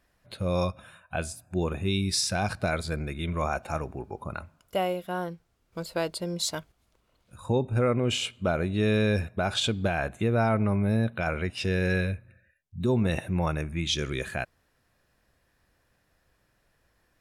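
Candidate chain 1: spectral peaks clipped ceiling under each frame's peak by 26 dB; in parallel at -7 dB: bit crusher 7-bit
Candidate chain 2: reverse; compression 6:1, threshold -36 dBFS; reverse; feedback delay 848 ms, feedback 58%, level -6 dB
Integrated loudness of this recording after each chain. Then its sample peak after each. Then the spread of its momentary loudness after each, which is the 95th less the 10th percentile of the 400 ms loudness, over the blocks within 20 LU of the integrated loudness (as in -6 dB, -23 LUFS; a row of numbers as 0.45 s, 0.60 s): -24.5 LUFS, -39.0 LUFS; -5.5 dBFS, -23.5 dBFS; 13 LU, 11 LU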